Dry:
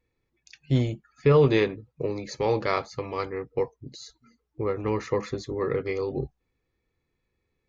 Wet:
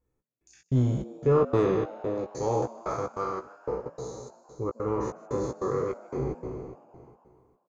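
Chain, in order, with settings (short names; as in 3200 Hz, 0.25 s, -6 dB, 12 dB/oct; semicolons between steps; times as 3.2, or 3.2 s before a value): spectral trails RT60 2.13 s; 3.39–3.86 gate -25 dBFS, range -16 dB; flange 1.8 Hz, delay 3.4 ms, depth 6.5 ms, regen -83%; step gate "xx..xx.x" 147 bpm -60 dB; doubler 16 ms -6.5 dB; on a send: frequency-shifting echo 0.153 s, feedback 65%, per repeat +110 Hz, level -20 dB; on the sum: soft clip -11 dBFS, distortion -24 dB; band shelf 3000 Hz -14.5 dB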